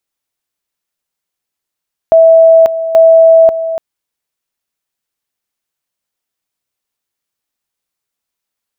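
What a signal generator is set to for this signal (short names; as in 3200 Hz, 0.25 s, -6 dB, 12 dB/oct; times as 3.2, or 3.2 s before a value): two-level tone 654 Hz -1.5 dBFS, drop 12 dB, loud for 0.54 s, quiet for 0.29 s, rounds 2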